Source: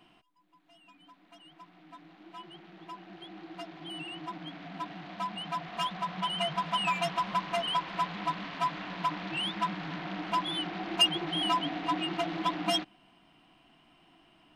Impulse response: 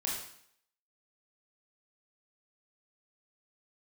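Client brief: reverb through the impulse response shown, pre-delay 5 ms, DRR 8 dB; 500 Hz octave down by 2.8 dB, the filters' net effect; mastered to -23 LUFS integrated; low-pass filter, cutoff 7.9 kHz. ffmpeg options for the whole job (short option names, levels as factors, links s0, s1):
-filter_complex "[0:a]lowpass=7900,equalizer=f=500:t=o:g=-5,asplit=2[s0][s1];[1:a]atrim=start_sample=2205,adelay=5[s2];[s1][s2]afir=irnorm=-1:irlink=0,volume=0.251[s3];[s0][s3]amix=inputs=2:normalize=0,volume=2.66"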